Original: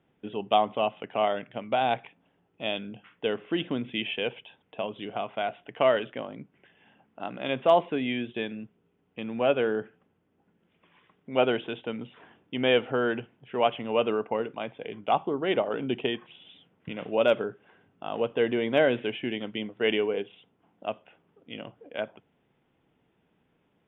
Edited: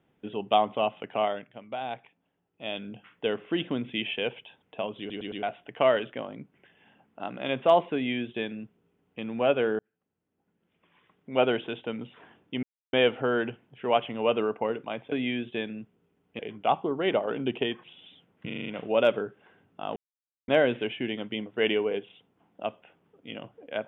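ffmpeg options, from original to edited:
-filter_complex "[0:a]asplit=18[a][b][c][d][e][f][g][h][i][j][k][l][m][n][o][p][q][r];[a]atrim=end=1.53,asetpts=PTS-STARTPTS,afade=t=out:st=1.15:d=0.38:silence=0.354813[s];[b]atrim=start=1.53:end=2.53,asetpts=PTS-STARTPTS,volume=-9dB[t];[c]atrim=start=2.53:end=5.102,asetpts=PTS-STARTPTS,afade=t=in:d=0.38:silence=0.354813[u];[d]atrim=start=4.988:end=5.102[v];[e]atrim=start=4.988:end=5.102[w];[f]atrim=start=4.988:end=5.102[x];[g]atrim=start=5.428:end=9.79,asetpts=PTS-STARTPTS,afade=t=out:st=4.358:d=0.004:c=hsin[y];[h]atrim=start=9.79:end=12.63,asetpts=PTS-STARTPTS,afade=t=in:d=1.63,afade=t=out:st=2.836:d=0.004:c=hsin,apad=pad_dur=0.3[z];[i]atrim=start=12.63:end=14.822,asetpts=PTS-STARTPTS,afade=t=in:d=0.004:c=hsin[aa];[j]atrim=start=7.938:end=9.212[ab];[k]atrim=start=14.818:end=16.932[ac];[l]atrim=start=16.888:end=16.932[ad];[m]atrim=start=16.888:end=16.932[ae];[n]atrim=start=16.888:end=16.932[af];[o]atrim=start=16.888:end=16.932[ag];[p]atrim=start=16.888:end=18.19,asetpts=PTS-STARTPTS,afade=t=out:st=1.298:d=0.004:c=hsin[ah];[q]atrim=start=18.19:end=18.71,asetpts=PTS-STARTPTS,volume=0[ai];[r]atrim=start=18.71,asetpts=PTS-STARTPTS,afade=t=in:d=0.004:c=hsin[aj];[s][t][u]concat=n=3:v=0:a=1[ak];[ak][v]acrossfade=d=0.004:c1=hsin:c2=hsin[al];[al][w]acrossfade=d=0.004:c1=hsin:c2=hsin[am];[am][x]acrossfade=d=0.004:c1=hsin:c2=hsin[an];[y][z][aa]concat=n=3:v=0:a=1[ao];[an][ao]acrossfade=d=0.004:c1=hsin:c2=hsin[ap];[ap][ab]acrossfade=d=0.004:c1=hsin:c2=hsin[aq];[aq][ac]acrossfade=d=0.004:c1=hsin:c2=hsin[ar];[ar][ad]acrossfade=d=0.004:c1=hsin:c2=hsin[as];[as][ae]acrossfade=d=0.004:c1=hsin:c2=hsin[at];[at][af]acrossfade=d=0.004:c1=hsin:c2=hsin[au];[au][ag]acrossfade=d=0.004:c1=hsin:c2=hsin[av];[ah][ai][aj]concat=n=3:v=0:a=1[aw];[av][aw]acrossfade=d=0.004:c1=hsin:c2=hsin"

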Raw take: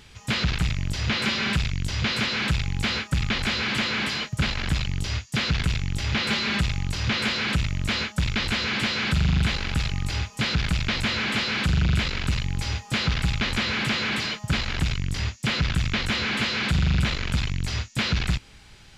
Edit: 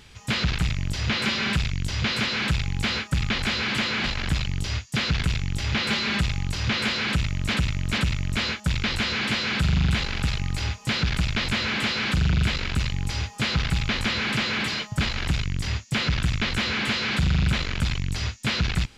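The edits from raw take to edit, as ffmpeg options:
-filter_complex "[0:a]asplit=4[a][b][c][d];[a]atrim=end=4.042[e];[b]atrim=start=4.438:end=7.942[f];[c]atrim=start=7.498:end=7.942[g];[d]atrim=start=7.498[h];[e][f]acrossfade=d=0.004:c1=hsin:c2=hsin[i];[i][g]acrossfade=d=0.004:c1=hsin:c2=hsin[j];[j][h]acrossfade=d=0.004:c1=hsin:c2=hsin"

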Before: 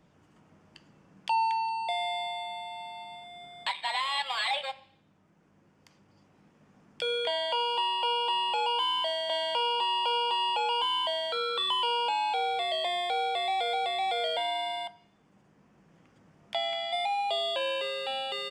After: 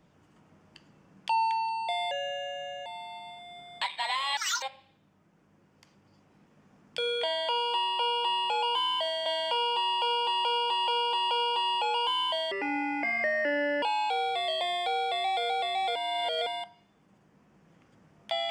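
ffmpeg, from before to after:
-filter_complex "[0:a]asplit=12[a][b][c][d][e][f][g][h][i][j][k][l];[a]atrim=end=2.114[m];[b]atrim=start=2.11:end=2.71,asetpts=PTS-STARTPTS,asetrate=35280,aresample=44100[n];[c]atrim=start=2.706:end=4.224[o];[d]atrim=start=4.22:end=4.66,asetpts=PTS-STARTPTS,asetrate=76734,aresample=44100[p];[e]atrim=start=4.656:end=10.482[q];[f]atrim=start=10.048:end=10.482[r];[g]atrim=start=10.048:end=10.482[s];[h]atrim=start=10.048:end=11.264[t];[i]atrim=start=11.26:end=12.06,asetpts=PTS-STARTPTS,asetrate=26901,aresample=44100,atrim=end_sample=57836,asetpts=PTS-STARTPTS[u];[j]atrim=start=12.056:end=14.192[v];[k]atrim=start=14.188:end=14.702,asetpts=PTS-STARTPTS,areverse[w];[l]atrim=start=14.698[x];[m][n]acrossfade=d=0.004:c1=hsin:c2=hsin[y];[y][o]acrossfade=d=0.004:c1=hsin:c2=hsin[z];[z][p]acrossfade=d=0.004:c1=hsin:c2=hsin[aa];[aa][q]acrossfade=d=0.004:c1=hsin:c2=hsin[ab];[ab][r]acrossfade=d=0.004:c1=hsin:c2=hsin[ac];[ac][s]acrossfade=d=0.004:c1=hsin:c2=hsin[ad];[ad][t]acrossfade=d=0.004:c1=hsin:c2=hsin[ae];[ae][u]acrossfade=d=0.004:c1=hsin:c2=hsin[af];[af][v]acrossfade=d=0.004:c1=hsin:c2=hsin[ag];[ag][w]acrossfade=d=0.004:c1=hsin:c2=hsin[ah];[ah][x]acrossfade=d=0.004:c1=hsin:c2=hsin"

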